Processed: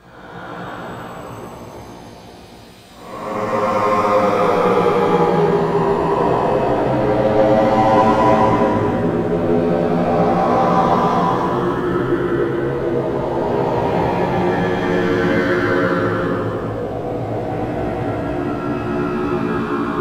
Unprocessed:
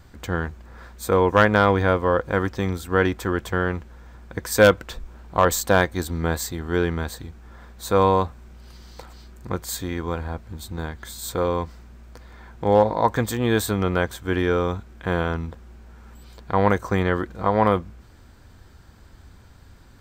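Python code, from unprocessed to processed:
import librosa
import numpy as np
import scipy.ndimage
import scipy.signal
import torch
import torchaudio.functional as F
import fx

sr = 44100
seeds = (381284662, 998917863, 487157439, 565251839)

p1 = fx.block_reorder(x, sr, ms=162.0, group=5)
p2 = scipy.signal.sosfilt(scipy.signal.butter(2, 170.0, 'highpass', fs=sr, output='sos'), p1)
p3 = 10.0 ** (-18.5 / 20.0) * (np.abs((p2 / 10.0 ** (-18.5 / 20.0) + 3.0) % 4.0 - 2.0) - 1.0)
p4 = p2 + (p3 * 10.0 ** (-8.0 / 20.0))
p5 = fx.paulstretch(p4, sr, seeds[0], factor=16.0, window_s=0.1, from_s=16.79)
p6 = p5 + fx.echo_single(p5, sr, ms=282, db=-5.5, dry=0)
p7 = fx.echo_pitch(p6, sr, ms=188, semitones=-4, count=3, db_per_echo=-3.0)
p8 = fx.doubler(p7, sr, ms=17.0, db=-2)
y = p8 * 10.0 ** (-1.0 / 20.0)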